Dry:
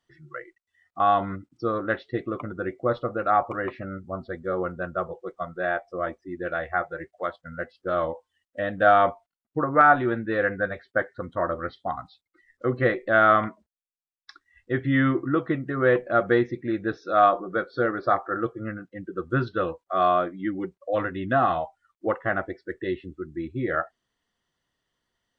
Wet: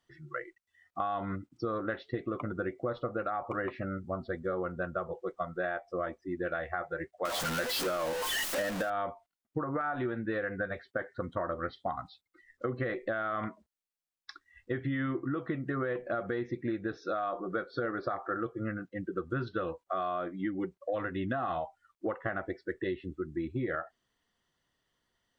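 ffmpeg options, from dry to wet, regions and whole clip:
ffmpeg -i in.wav -filter_complex "[0:a]asettb=1/sr,asplit=3[link_01][link_02][link_03];[link_01]atrim=end=7.254[link_04];[link_02]atrim=start=7.25:end=8.9,asetpts=PTS-STARTPTS,afade=type=in:duration=0.004:curve=qsin,afade=type=out:start_time=1.646:duration=0.004:curve=qsin,aeval=exprs='val(0)+0.5*0.0668*sgn(val(0))':channel_layout=same,equalizer=frequency=82:width=0.7:gain=-11[link_05];[link_03]atrim=start=8.896[link_06];[link_04][link_05]acrossfade=duration=0.004:curve1=hsin:curve2=qsin[link_07];[link_07][link_06]acrossfade=duration=0.004:curve1=qsin:curve2=hsin,alimiter=limit=-16.5dB:level=0:latency=1:release=71,acompressor=threshold=-30dB:ratio=6" out.wav

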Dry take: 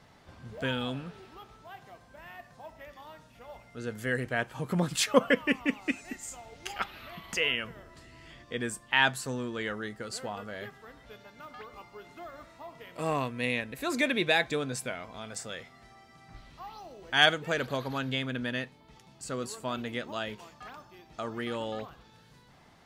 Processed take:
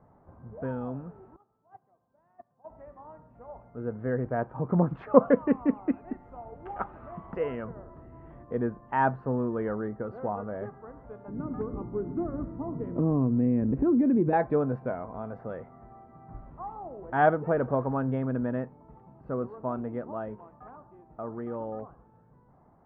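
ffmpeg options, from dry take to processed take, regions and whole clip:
ffmpeg -i in.wav -filter_complex "[0:a]asettb=1/sr,asplit=3[link_01][link_02][link_03];[link_01]atrim=end=1.364[link_04];[link_02]atrim=start=1.36:end=2.7,asetpts=PTS-STARTPTS,afade=type=in:duration=0.004:curve=qsin,afade=type=out:start_time=1.336:duration=0.004:curve=qsin,highpass=110,agate=range=-17dB:threshold=-45dB:ratio=16:release=100:detection=peak[link_05];[link_03]atrim=start=2.696[link_06];[link_04][link_05]acrossfade=duration=0.004:curve1=hsin:curve2=qsin[link_07];[link_07][link_06]acrossfade=duration=0.004:curve1=qsin:curve2=hsin,asettb=1/sr,asplit=3[link_08][link_09][link_10];[link_08]atrim=end=11.284[link_11];[link_09]atrim=start=11.28:end=14.33,asetpts=PTS-STARTPTS,afade=type=in:duration=0.004:curve=qsin,afade=type=out:start_time=3.046:duration=0.004:curve=qsin,lowshelf=frequency=460:width_type=q:width=1.5:gain=13.5,acompressor=threshold=-29dB:ratio=4:attack=3.2:release=140:knee=1:detection=peak[link_12];[link_10]atrim=start=14.326[link_13];[link_11][link_12]acrossfade=duration=0.004:curve1=hsin:curve2=qsin[link_14];[link_14][link_13]acrossfade=duration=0.004:curve1=qsin:curve2=hsin,lowpass=frequency=1100:width=0.5412,lowpass=frequency=1100:width=1.3066,dynaudnorm=framelen=240:gausssize=31:maxgain=6.5dB" out.wav

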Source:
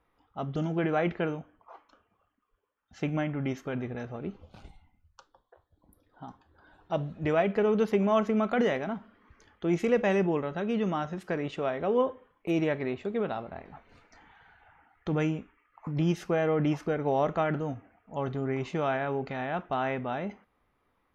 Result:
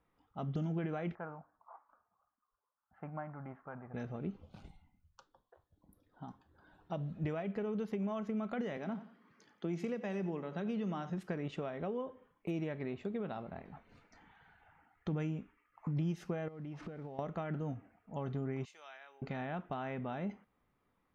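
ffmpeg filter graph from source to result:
ffmpeg -i in.wav -filter_complex "[0:a]asettb=1/sr,asplit=3[link_01][link_02][link_03];[link_01]atrim=end=1.154[link_04];[link_02]atrim=start=1.15:end=3.94,asetpts=PTS-STARTPTS,afade=type=in:duration=0.004:curve=qsin,afade=type=out:start_time=2.786:duration=0.004:curve=qsin,lowpass=frequency=1400:width=0.5412,lowpass=frequency=1400:width=1.3066,lowshelf=frequency=560:width_type=q:width=1.5:gain=-12.5[link_05];[link_03]atrim=start=3.936[link_06];[link_04][link_05]acrossfade=duration=0.004:curve1=hsin:curve2=qsin[link_07];[link_07][link_06]acrossfade=duration=0.004:curve1=qsin:curve2=hsin,asettb=1/sr,asplit=3[link_08][link_09][link_10];[link_08]atrim=end=8.774[link_11];[link_09]atrim=start=8.77:end=11.1,asetpts=PTS-STARTPTS,afade=type=in:duration=0.004:curve=qsin,afade=type=out:start_time=2.326:duration=0.004:curve=qsin,highpass=frequency=150:width=0.5412,highpass=frequency=150:width=1.3066,equalizer=frequency=4700:width_type=o:width=0.44:gain=6,aecho=1:1:89|178|267:0.168|0.052|0.0161,atrim=end_sample=102753[link_12];[link_10]atrim=start=11.096[link_13];[link_11][link_12]acrossfade=duration=0.004:curve1=hsin:curve2=qsin[link_14];[link_14][link_13]acrossfade=duration=0.004:curve1=qsin:curve2=hsin,asettb=1/sr,asplit=3[link_15][link_16][link_17];[link_15]atrim=end=16.484[link_18];[link_16]atrim=start=16.48:end=17.19,asetpts=PTS-STARTPTS,afade=type=in:duration=0.004:curve=qsin,afade=type=out:start_time=0.706:duration=0.004:curve=qsin,aeval=exprs='val(0)+0.5*0.00631*sgn(val(0))':channel_layout=same,lowpass=4200,acompressor=threshold=-38dB:ratio=16:attack=3.2:release=140:knee=1:detection=peak[link_19];[link_17]atrim=start=17.186[link_20];[link_18][link_19]acrossfade=duration=0.004:curve1=hsin:curve2=qsin[link_21];[link_21][link_20]acrossfade=duration=0.004:curve1=qsin:curve2=hsin,asettb=1/sr,asplit=3[link_22][link_23][link_24];[link_22]atrim=end=18.654[link_25];[link_23]atrim=start=18.65:end=19.22,asetpts=PTS-STARTPTS,afade=type=in:duration=0.004:curve=qsin,afade=type=out:start_time=0.566:duration=0.004:curve=qsin,highpass=470,aderivative[link_26];[link_24]atrim=start=19.216[link_27];[link_25][link_26]acrossfade=duration=0.004:curve1=hsin:curve2=qsin[link_28];[link_28][link_27]acrossfade=duration=0.004:curve1=qsin:curve2=hsin,acompressor=threshold=-31dB:ratio=6,equalizer=frequency=170:width=1.1:gain=7,volume=-6.5dB" out.wav

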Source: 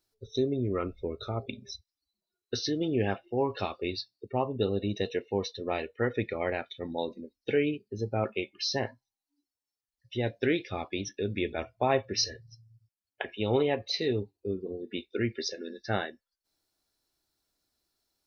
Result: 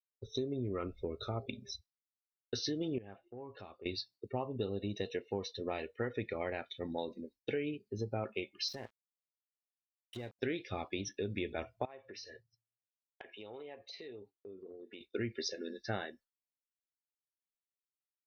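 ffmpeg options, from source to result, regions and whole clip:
ffmpeg -i in.wav -filter_complex "[0:a]asettb=1/sr,asplit=3[link_01][link_02][link_03];[link_01]atrim=end=2.984[link_04];[link_02]atrim=start=2.98:end=3.86,asetpts=PTS-STARTPTS,afade=type=in:duration=0.004:curve=qsin,afade=type=out:start_time=0.876:duration=0.004:curve=qsin,lowpass=frequency=1700:poles=1,acompressor=threshold=-50dB:ratio=2.5:attack=3.2:release=140:knee=1:detection=peak[link_05];[link_03]atrim=start=3.856[link_06];[link_04][link_05]acrossfade=duration=0.004:curve1=hsin:curve2=qsin[link_07];[link_07][link_06]acrossfade=duration=0.004:curve1=qsin:curve2=hsin,asettb=1/sr,asplit=3[link_08][link_09][link_10];[link_08]atrim=end=8.684[link_11];[link_09]atrim=start=8.68:end=10.39,asetpts=PTS-STARTPTS,afade=type=in:duration=0.004:curve=qsin,afade=type=out:start_time=1.706:duration=0.004:curve=qsin,aeval=exprs='sgn(val(0))*max(abs(val(0))-0.00631,0)':channel_layout=same,acompressor=threshold=-36dB:ratio=12:attack=3.2:release=140:knee=1:detection=peak[link_12];[link_10]atrim=start=10.386[link_13];[link_11][link_12]acrossfade=duration=0.004:curve1=hsin:curve2=qsin[link_14];[link_14][link_13]acrossfade=duration=0.004:curve1=qsin:curve2=hsin,asettb=1/sr,asplit=3[link_15][link_16][link_17];[link_15]atrim=end=11.854[link_18];[link_16]atrim=start=11.85:end=15.01,asetpts=PTS-STARTPTS,afade=type=in:duration=0.004:curve=qsin,afade=type=out:start_time=3.156:duration=0.004:curve=qsin,bass=frequency=250:gain=-14,treble=frequency=4000:gain=-9,acompressor=threshold=-44dB:ratio=5:attack=3.2:release=140:knee=1:detection=peak[link_19];[link_17]atrim=start=15.006[link_20];[link_18][link_19]acrossfade=duration=0.004:curve1=hsin:curve2=qsin[link_21];[link_21][link_20]acrossfade=duration=0.004:curve1=qsin:curve2=hsin,agate=range=-33dB:threshold=-51dB:ratio=3:detection=peak,acompressor=threshold=-31dB:ratio=4,volume=-2.5dB" out.wav

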